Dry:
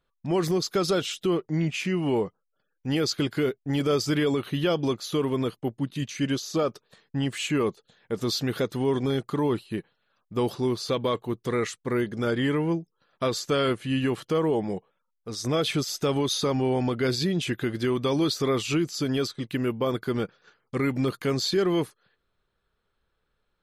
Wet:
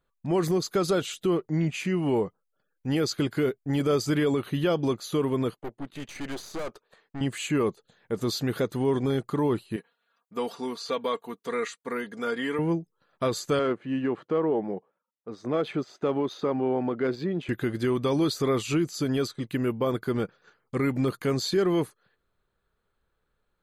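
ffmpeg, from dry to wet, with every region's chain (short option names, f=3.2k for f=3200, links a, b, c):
-filter_complex "[0:a]asettb=1/sr,asplit=3[a][b][c];[a]atrim=end=5.544[d];[b]atrim=start=5.54:end=7.21,asetpts=PTS-STARTPTS,afade=t=in:d=0.004:c=qsin,afade=t=out:st=1.666:d=0.004:c=qsin,bass=f=250:g=-15,treble=f=4k:g=-8,acontrast=31,aeval=exprs='(tanh(35.5*val(0)+0.75)-tanh(0.75))/35.5':c=same[e];[c]atrim=start=7.206[f];[d][e]acrossfade=d=0.004:c1=hsin:c2=qsin[g];[g][f]acrossfade=d=0.004:c1=qsin:c2=hsin,asettb=1/sr,asplit=3[h][i][j];[h]atrim=end=9.764[k];[i]atrim=start=9.76:end=12.59,asetpts=PTS-STARTPTS,afade=t=in:d=0.004:c=qsin,afade=t=out:st=2.826:d=0.004:c=qsin,acrossover=split=6700[l][m];[m]acompressor=threshold=-56dB:ratio=4:attack=1:release=60[n];[l][n]amix=inputs=2:normalize=0,highpass=f=680:p=1,aecho=1:1:4.3:0.64,atrim=end_sample=124803[o];[j]atrim=start=12.586[p];[k][o]acrossfade=d=0.004:c1=hsin:c2=qsin[q];[q][p]acrossfade=d=0.004:c1=qsin:c2=hsin,asettb=1/sr,asplit=3[r][s][t];[r]atrim=end=13.594[u];[s]atrim=start=13.59:end=17.49,asetpts=PTS-STARTPTS,afade=t=in:d=0.004:c=qsin,afade=t=out:st=3.896:d=0.004:c=qsin,adynamicsmooth=sensitivity=0.5:basefreq=2k,highpass=210[v];[t]atrim=start=17.486[w];[u][v]acrossfade=d=0.004:c1=hsin:c2=qsin[x];[x][w]acrossfade=d=0.004:c1=qsin:c2=hsin,equalizer=f=3.2k:t=o:w=1.1:g=-4.5,bandreject=f=5.4k:w=6.4"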